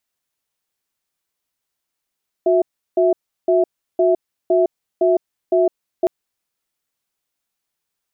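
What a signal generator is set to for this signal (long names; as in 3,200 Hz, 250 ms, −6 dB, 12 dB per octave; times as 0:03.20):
tone pair in a cadence 364 Hz, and 658 Hz, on 0.16 s, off 0.35 s, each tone −14.5 dBFS 3.61 s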